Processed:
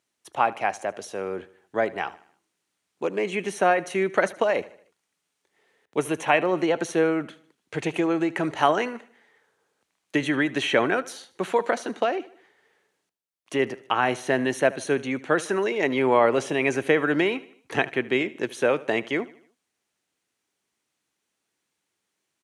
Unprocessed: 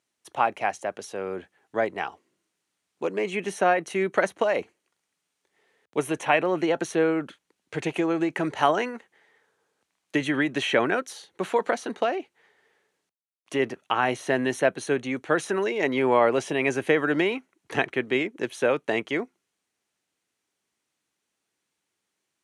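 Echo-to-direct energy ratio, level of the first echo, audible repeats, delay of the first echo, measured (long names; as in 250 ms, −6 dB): −18.5 dB, −19.5 dB, 3, 76 ms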